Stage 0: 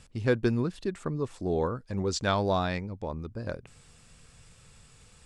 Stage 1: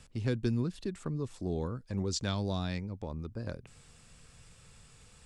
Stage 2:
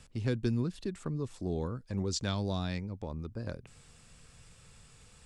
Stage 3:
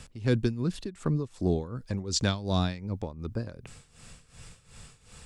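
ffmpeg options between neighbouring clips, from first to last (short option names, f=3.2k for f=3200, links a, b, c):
-filter_complex "[0:a]acrossover=split=290|3000[a][b][c];[b]acompressor=threshold=-42dB:ratio=2.5[d];[a][d][c]amix=inputs=3:normalize=0,volume=-1.5dB"
-af anull
-af "tremolo=f=2.7:d=0.83,volume=9dB"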